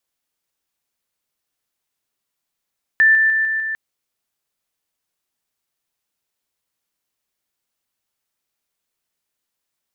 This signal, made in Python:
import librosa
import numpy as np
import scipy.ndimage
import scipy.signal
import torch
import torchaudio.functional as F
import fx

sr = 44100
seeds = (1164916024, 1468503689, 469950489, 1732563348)

y = fx.level_ladder(sr, hz=1770.0, from_db=-9.0, step_db=-3.0, steps=5, dwell_s=0.15, gap_s=0.0)